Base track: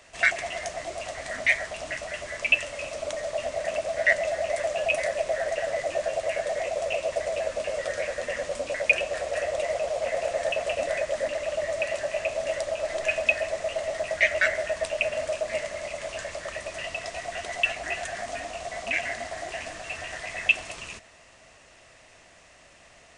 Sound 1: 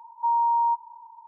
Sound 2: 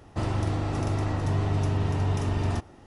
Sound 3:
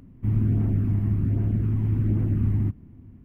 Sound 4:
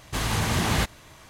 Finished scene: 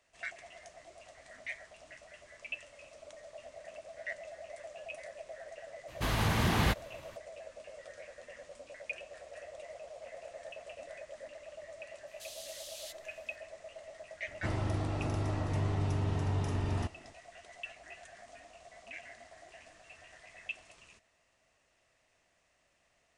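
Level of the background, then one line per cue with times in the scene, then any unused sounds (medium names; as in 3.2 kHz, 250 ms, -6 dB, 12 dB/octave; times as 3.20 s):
base track -19.5 dB
5.88 s: add 4 -4 dB + peaking EQ 7.8 kHz -8 dB 1.3 oct
12.07 s: add 4 -13.5 dB + inverse Chebyshev high-pass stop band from 1.3 kHz, stop band 50 dB
14.27 s: add 2 -6.5 dB
not used: 1, 3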